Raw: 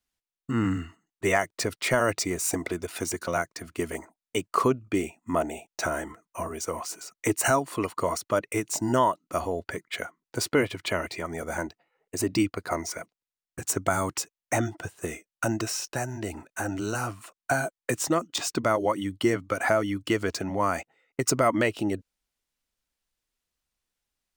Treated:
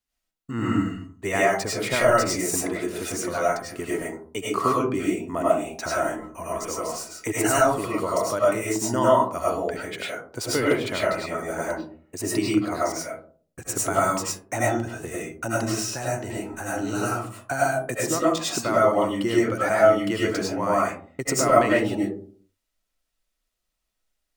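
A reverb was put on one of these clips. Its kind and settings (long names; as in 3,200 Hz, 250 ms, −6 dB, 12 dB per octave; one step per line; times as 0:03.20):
comb and all-pass reverb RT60 0.48 s, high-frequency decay 0.35×, pre-delay 60 ms, DRR −6 dB
level −3.5 dB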